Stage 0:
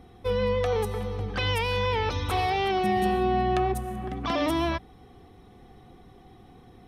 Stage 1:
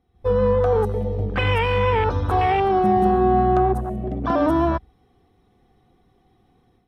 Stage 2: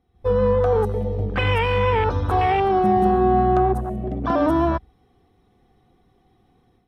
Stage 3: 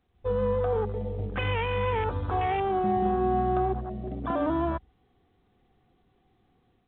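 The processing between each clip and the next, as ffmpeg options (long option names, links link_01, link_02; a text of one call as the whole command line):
ffmpeg -i in.wav -af "afwtdn=0.0316,dynaudnorm=framelen=130:gausssize=3:maxgain=10dB,volume=-2.5dB" out.wav
ffmpeg -i in.wav -af anull out.wav
ffmpeg -i in.wav -af "volume=-8dB" -ar 8000 -c:a pcm_mulaw out.wav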